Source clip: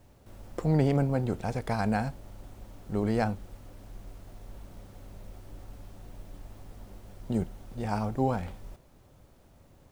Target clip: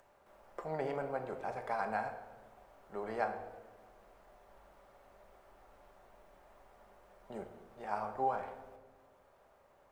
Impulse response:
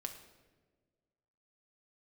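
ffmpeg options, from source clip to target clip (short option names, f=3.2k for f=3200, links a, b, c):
-filter_complex "[0:a]acrossover=split=510 2000:gain=0.0708 1 0.2[a][b][c];[a][b][c]amix=inputs=3:normalize=0,acompressor=mode=upward:threshold=-59dB:ratio=2.5[d];[1:a]atrim=start_sample=2205[e];[d][e]afir=irnorm=-1:irlink=0,volume=1dB"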